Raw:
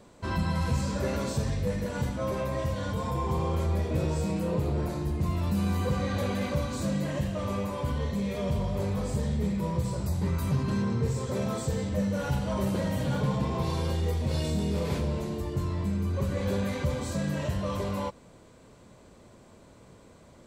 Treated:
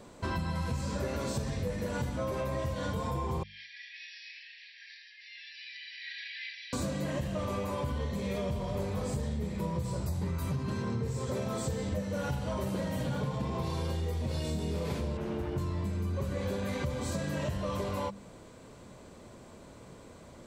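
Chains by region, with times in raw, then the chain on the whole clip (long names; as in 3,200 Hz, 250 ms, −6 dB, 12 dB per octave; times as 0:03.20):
0:03.43–0:06.73: linear-phase brick-wall band-pass 1,600–5,800 Hz + high-frequency loss of the air 97 metres
0:15.17–0:15.58: lower of the sound and its delayed copy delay 0.33 ms + bass and treble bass −3 dB, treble −12 dB
whole clip: mains-hum notches 50/100/150/200 Hz; downward compressor, threshold −33 dBFS; level +3 dB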